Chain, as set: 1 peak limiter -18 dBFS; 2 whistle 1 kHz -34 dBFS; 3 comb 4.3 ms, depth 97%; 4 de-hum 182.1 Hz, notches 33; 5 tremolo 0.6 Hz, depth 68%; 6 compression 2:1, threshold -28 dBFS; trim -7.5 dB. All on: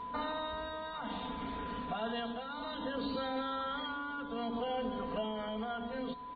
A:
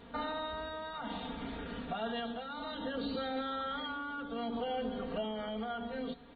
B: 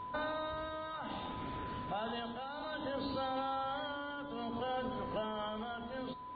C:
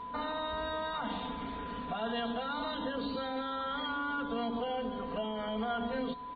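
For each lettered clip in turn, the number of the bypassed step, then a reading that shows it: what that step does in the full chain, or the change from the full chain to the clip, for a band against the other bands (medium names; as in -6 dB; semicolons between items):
2, 1 kHz band -2.0 dB; 3, 125 Hz band +3.0 dB; 5, loudness change +2.5 LU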